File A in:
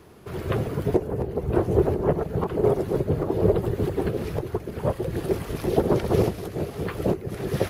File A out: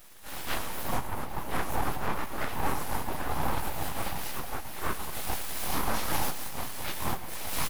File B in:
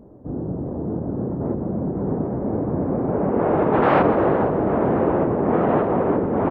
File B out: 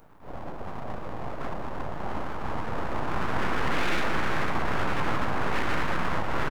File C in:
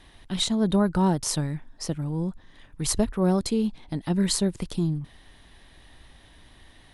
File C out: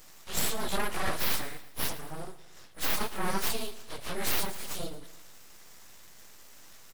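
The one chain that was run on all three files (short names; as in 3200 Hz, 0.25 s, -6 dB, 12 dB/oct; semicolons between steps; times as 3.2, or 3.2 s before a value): phase scrambler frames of 0.1 s; HPF 1100 Hz 6 dB/oct; high shelf 7200 Hz +11 dB; limiter -21 dBFS; full-wave rectifier; feedback echo 0.112 s, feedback 51%, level -16 dB; gain +5 dB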